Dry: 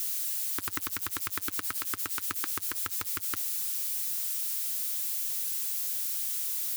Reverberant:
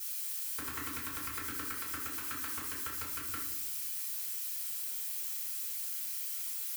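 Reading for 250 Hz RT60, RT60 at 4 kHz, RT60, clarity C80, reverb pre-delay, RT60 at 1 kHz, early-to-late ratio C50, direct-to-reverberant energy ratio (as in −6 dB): 1.3 s, 0.45 s, 0.90 s, 7.0 dB, 3 ms, 0.70 s, 4.0 dB, −8.5 dB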